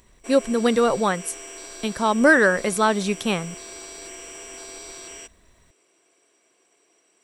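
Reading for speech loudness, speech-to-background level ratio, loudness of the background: -21.0 LUFS, 16.0 dB, -37.0 LUFS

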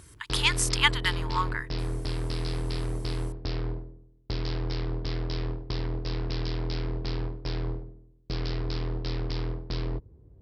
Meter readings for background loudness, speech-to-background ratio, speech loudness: -33.0 LUFS, 6.0 dB, -27.0 LUFS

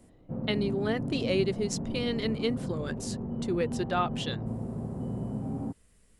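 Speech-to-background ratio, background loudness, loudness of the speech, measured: 3.5 dB, -35.5 LUFS, -32.0 LUFS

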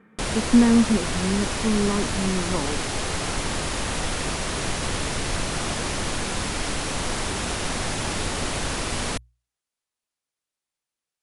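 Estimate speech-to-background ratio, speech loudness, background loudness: 4.0 dB, -23.0 LUFS, -27.0 LUFS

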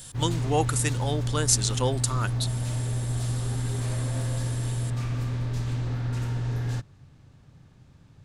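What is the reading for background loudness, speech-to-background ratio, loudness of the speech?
-29.5 LUFS, 2.0 dB, -27.5 LUFS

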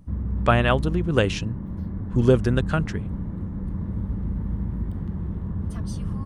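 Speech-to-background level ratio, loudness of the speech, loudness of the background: 7.0 dB, -23.0 LUFS, -30.0 LUFS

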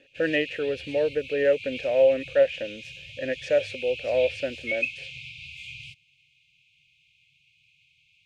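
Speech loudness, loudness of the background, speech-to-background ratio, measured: -25.5 LUFS, -36.0 LUFS, 10.5 dB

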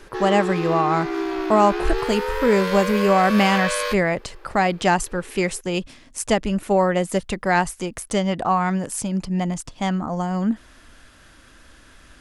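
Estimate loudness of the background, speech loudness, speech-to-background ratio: -26.0 LUFS, -21.5 LUFS, 4.5 dB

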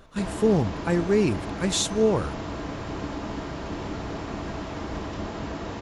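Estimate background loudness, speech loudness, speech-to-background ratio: -33.5 LUFS, -24.5 LUFS, 9.0 dB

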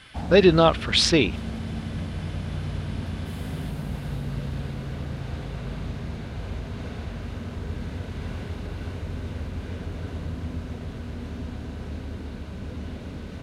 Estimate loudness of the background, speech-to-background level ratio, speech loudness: -33.5 LUFS, 14.5 dB, -19.0 LUFS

